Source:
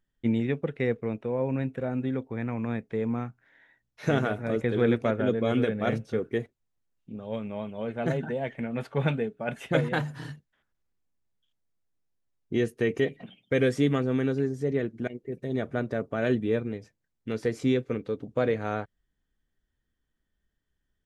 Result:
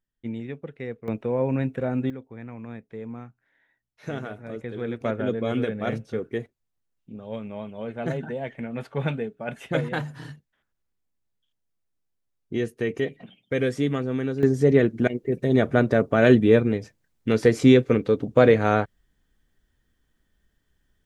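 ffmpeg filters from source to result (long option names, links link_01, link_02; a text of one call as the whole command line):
ffmpeg -i in.wav -af "asetnsamples=nb_out_samples=441:pad=0,asendcmd='1.08 volume volume 4dB;2.1 volume volume -7.5dB;5.01 volume volume -0.5dB;14.43 volume volume 10dB',volume=-7dB" out.wav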